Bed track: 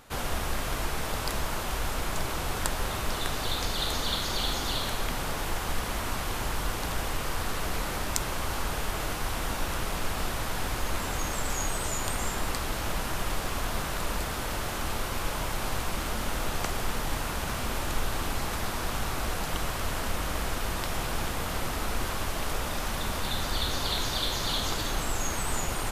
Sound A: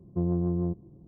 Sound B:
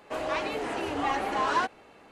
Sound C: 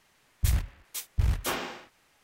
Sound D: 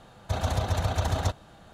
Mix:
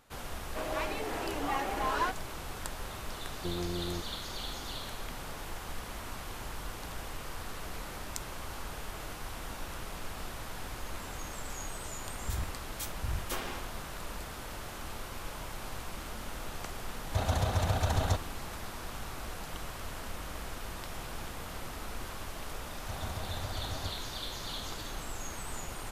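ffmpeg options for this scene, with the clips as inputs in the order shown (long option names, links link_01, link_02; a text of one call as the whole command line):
ffmpeg -i bed.wav -i cue0.wav -i cue1.wav -i cue2.wav -i cue3.wav -filter_complex "[4:a]asplit=2[link_01][link_02];[0:a]volume=-10dB[link_03];[1:a]equalizer=frequency=140:width=1.5:gain=-13.5[link_04];[3:a]alimiter=limit=-22dB:level=0:latency=1:release=184[link_05];[2:a]atrim=end=2.11,asetpts=PTS-STARTPTS,volume=-5dB,afade=type=in:duration=0.004:curve=hsin,afade=type=out:start_time=2.106:duration=0.004:curve=hsin,adelay=450[link_06];[link_04]atrim=end=1.07,asetpts=PTS-STARTPTS,volume=-4.5dB,afade=type=in:duration=0.004:curve=hsin,afade=type=out:start_time=1.066:duration=0.004:curve=hsin,adelay=3280[link_07];[link_05]atrim=end=2.23,asetpts=PTS-STARTPTS,volume=-4dB,afade=type=in:duration=0.004:curve=hsin,afade=type=out:start_time=2.226:duration=0.004:curve=hsin,adelay=11850[link_08];[link_01]atrim=end=1.73,asetpts=PTS-STARTPTS,volume=-2.5dB,afade=type=in:duration=0.004:curve=hsin,afade=type=out:start_time=1.726:duration=0.004:curve=hsin,adelay=16850[link_09];[link_02]atrim=end=1.73,asetpts=PTS-STARTPTS,volume=-13dB,afade=type=in:duration=0.004:curve=hsin,afade=type=out:start_time=1.726:duration=0.004:curve=hsin,adelay=22590[link_10];[link_03][link_06][link_07][link_08][link_09][link_10]amix=inputs=6:normalize=0" out.wav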